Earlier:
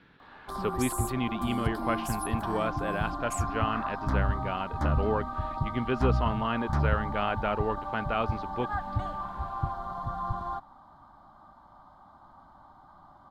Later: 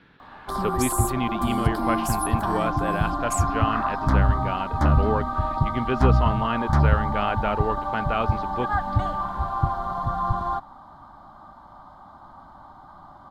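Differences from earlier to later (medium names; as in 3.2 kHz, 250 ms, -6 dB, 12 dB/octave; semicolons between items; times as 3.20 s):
speech +3.5 dB; background +8.0 dB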